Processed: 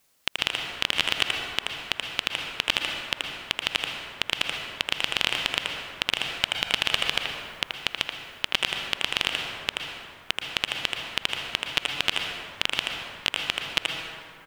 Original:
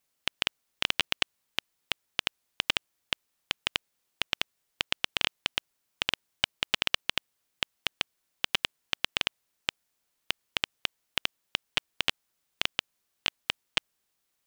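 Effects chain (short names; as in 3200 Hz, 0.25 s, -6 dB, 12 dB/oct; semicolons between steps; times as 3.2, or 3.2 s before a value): 7.14–8.48 negative-ratio compressor -32 dBFS, ratio -1; speakerphone echo 80 ms, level -9 dB; plate-style reverb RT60 2.5 s, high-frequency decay 0.45×, pre-delay 0.105 s, DRR 10.5 dB; maximiser +13 dB; gain -1 dB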